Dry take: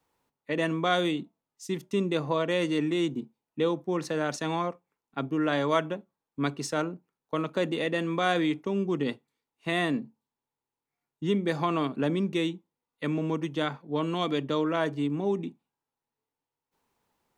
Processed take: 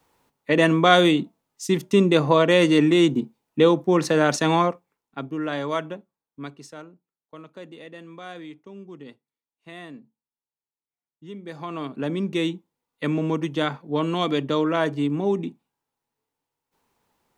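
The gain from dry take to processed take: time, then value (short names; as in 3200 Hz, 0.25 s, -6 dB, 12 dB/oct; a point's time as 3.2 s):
4.61 s +10 dB
5.23 s -1 dB
5.97 s -1 dB
6.87 s -13 dB
11.28 s -13 dB
11.92 s -1.5 dB
12.52 s +5 dB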